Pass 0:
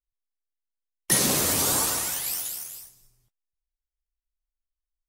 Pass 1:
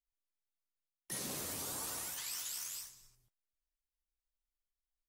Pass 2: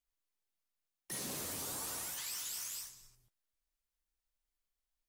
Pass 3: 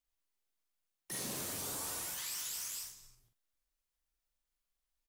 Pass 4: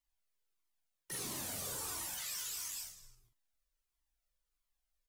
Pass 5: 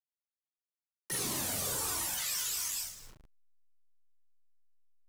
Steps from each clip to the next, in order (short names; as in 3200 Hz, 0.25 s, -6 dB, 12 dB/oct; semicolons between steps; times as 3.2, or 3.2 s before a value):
spectral gain 2.18–3.15, 890–8400 Hz +8 dB; reverse; compressor 6:1, threshold -33 dBFS, peak gain reduction 15.5 dB; reverse; gain -6.5 dB
soft clip -38 dBFS, distortion -15 dB; gain +2.5 dB
doubler 44 ms -6 dB
cascading flanger falling 1.5 Hz; gain +3.5 dB
level-crossing sampler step -58 dBFS; gain +7 dB